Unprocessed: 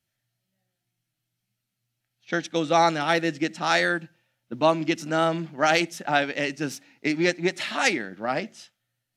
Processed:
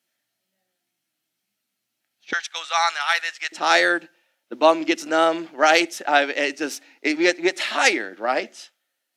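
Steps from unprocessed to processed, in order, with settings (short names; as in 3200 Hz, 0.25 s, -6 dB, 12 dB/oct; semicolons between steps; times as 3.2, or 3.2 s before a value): HPF 230 Hz 24 dB/oct, from 2.33 s 1000 Hz, from 3.52 s 310 Hz; gain +5 dB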